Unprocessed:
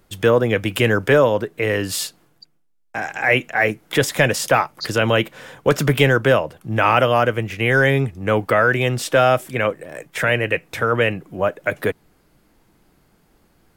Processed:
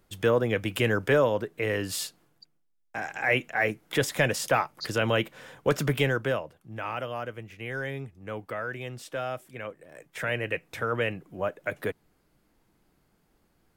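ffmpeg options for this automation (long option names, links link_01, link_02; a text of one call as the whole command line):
ffmpeg -i in.wav -af "afade=type=out:start_time=5.74:duration=0.95:silence=0.316228,afade=type=in:start_time=9.67:duration=0.81:silence=0.398107" out.wav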